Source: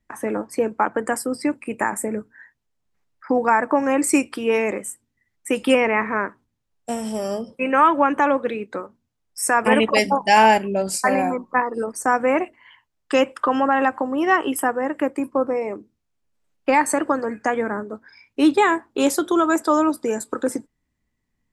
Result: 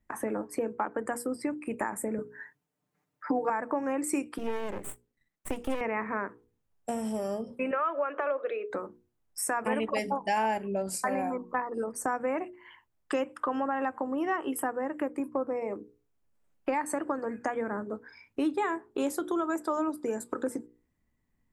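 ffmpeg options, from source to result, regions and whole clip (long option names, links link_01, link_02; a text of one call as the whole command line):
ffmpeg -i in.wav -filter_complex "[0:a]asettb=1/sr,asplit=3[link_01][link_02][link_03];[link_01]atrim=end=2.184[link_04];[link_02]atrim=start=2.18:end=3.5,asetpts=PTS-STARTPTS,afade=type=in:duration=0.004:curve=qsin,afade=type=out:start_time=1.316:duration=0.004:curve=qsin,highpass=170,lowshelf=frequency=320:gain=6,aecho=1:1:6.7:0.96,atrim=end_sample=58212[link_05];[link_03]atrim=start=3.496[link_06];[link_04][link_05]acrossfade=duration=0.004:curve1=hsin:curve2=qsin[link_07];[link_07][link_06]acrossfade=duration=0.004:curve1=qsin:curve2=hsin,asettb=1/sr,asplit=3[link_08][link_09][link_10];[link_08]atrim=end=4.384[link_11];[link_09]atrim=start=4.38:end=5.81,asetpts=PTS-STARTPTS,afade=type=in:duration=0.004:curve=qsin,afade=type=out:start_time=1.426:duration=0.004:curve=qsin,highpass=frequency=160:width=0.5412,highpass=frequency=160:width=1.3066,aeval=exprs='max(val(0),0)':channel_layout=same[link_12];[link_10]atrim=start=5.806[link_13];[link_11][link_12]acrossfade=duration=0.004:curve1=hsin:curve2=qsin[link_14];[link_14][link_13]acrossfade=duration=0.004:curve1=qsin:curve2=hsin,asettb=1/sr,asplit=3[link_15][link_16][link_17];[link_15]atrim=end=7.714[link_18];[link_16]atrim=start=7.71:end=8.7,asetpts=PTS-STARTPTS,afade=type=in:duration=0.004:curve=qsin,afade=type=out:start_time=0.986:duration=0.004:curve=qsin,acompressor=threshold=-19dB:ratio=2:attack=3.2:release=140:knee=1:detection=peak,highpass=frequency=400:width=0.5412,highpass=frequency=400:width=1.3066,equalizer=frequency=410:width_type=q:width=4:gain=5,equalizer=frequency=610:width_type=q:width=4:gain=8,equalizer=frequency=880:width_type=q:width=4:gain=-7,equalizer=frequency=1300:width_type=q:width=4:gain=7,equalizer=frequency=2700:width_type=q:width=4:gain=4,lowpass=frequency=4500:width=0.5412,lowpass=frequency=4500:width=1.3066[link_19];[link_17]atrim=start=8.696[link_20];[link_18][link_19]acrossfade=duration=0.004:curve1=hsin:curve2=qsin[link_21];[link_21][link_20]acrossfade=duration=0.004:curve1=qsin:curve2=hsin,equalizer=frequency=4500:width=0.61:gain=-7.5,bandreject=frequency=60:width_type=h:width=6,bandreject=frequency=120:width_type=h:width=6,bandreject=frequency=180:width_type=h:width=6,bandreject=frequency=240:width_type=h:width=6,bandreject=frequency=300:width_type=h:width=6,bandreject=frequency=360:width_type=h:width=6,bandreject=frequency=420:width_type=h:width=6,bandreject=frequency=480:width_type=h:width=6,acompressor=threshold=-32dB:ratio=2.5" out.wav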